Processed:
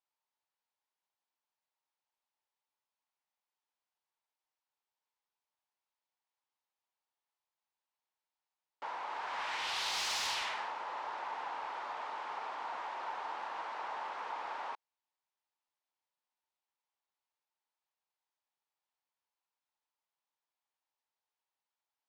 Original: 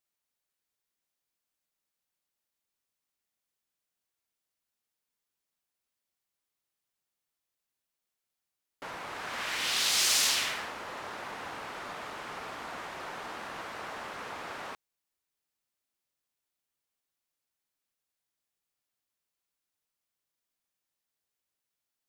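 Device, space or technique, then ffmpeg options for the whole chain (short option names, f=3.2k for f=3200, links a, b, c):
intercom: -af "highpass=410,lowpass=4.9k,equalizer=f=900:t=o:w=0.54:g=12,asoftclip=type=tanh:threshold=-24.5dB,volume=-5dB"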